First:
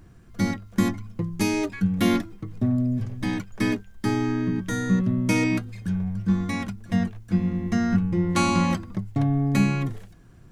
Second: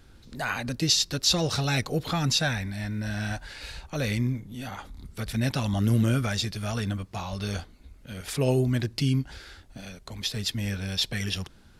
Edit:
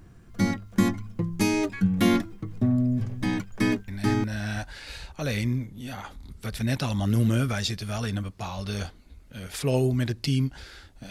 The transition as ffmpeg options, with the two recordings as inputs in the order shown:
-filter_complex "[0:a]apad=whole_dur=11.1,atrim=end=11.1,atrim=end=4.24,asetpts=PTS-STARTPTS[a];[1:a]atrim=start=2.62:end=9.84,asetpts=PTS-STARTPTS[b];[a][b]acrossfade=d=0.36:c1=log:c2=log"

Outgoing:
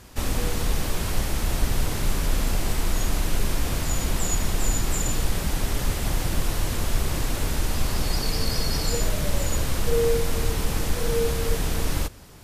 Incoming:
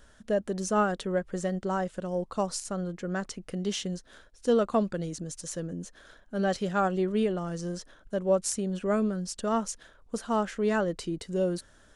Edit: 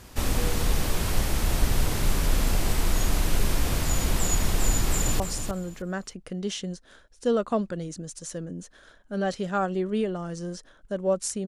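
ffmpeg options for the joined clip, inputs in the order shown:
-filter_complex "[0:a]apad=whole_dur=11.47,atrim=end=11.47,atrim=end=5.202[a];[1:a]atrim=start=2.418:end=8.69[b];[a][b]acrossfade=d=0.004:c1=hsin:c2=hsin,asplit=2[c][d];[d]afade=t=in:st=4.9:d=0.01,afade=t=out:st=5.2:d=0.01,aecho=0:1:310|620|930:0.398107|0.0796214|0.0159243[e];[c][e]amix=inputs=2:normalize=0"

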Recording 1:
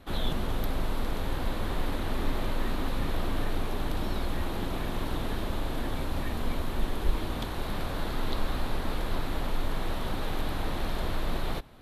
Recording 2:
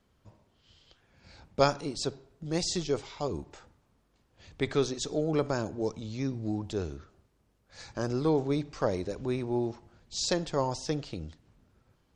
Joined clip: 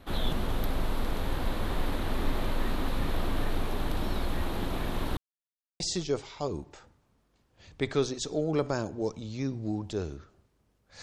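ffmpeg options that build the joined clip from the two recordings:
-filter_complex "[0:a]apad=whole_dur=11.02,atrim=end=11.02,asplit=2[a][b];[a]atrim=end=5.17,asetpts=PTS-STARTPTS,afade=t=out:st=5.166:d=0.004:c=hsin[c];[b]atrim=start=5.17:end=5.8,asetpts=PTS-STARTPTS,volume=0[d];[1:a]atrim=start=2.6:end=7.82,asetpts=PTS-STARTPTS,afade=t=in:d=0.004:c=hsin[e];[c][d][e]concat=n=3:v=0:a=1"

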